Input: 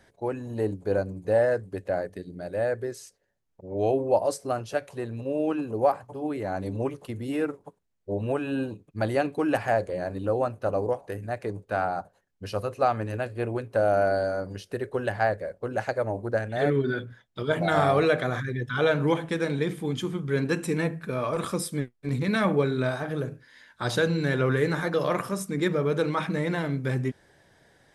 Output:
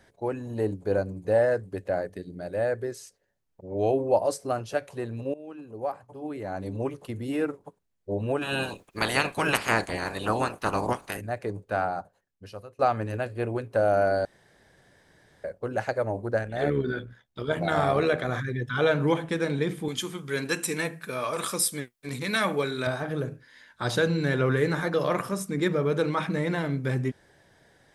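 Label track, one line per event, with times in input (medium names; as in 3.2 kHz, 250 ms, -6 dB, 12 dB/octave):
5.340000	7.110000	fade in, from -20 dB
8.410000	11.200000	spectral peaks clipped ceiling under each frame's peak by 26 dB
11.790000	12.790000	fade out, to -22 dB
14.250000	15.440000	room tone
16.430000	18.290000	AM modulator 72 Hz, depth 30%
19.880000	22.870000	tilt EQ +3 dB/octave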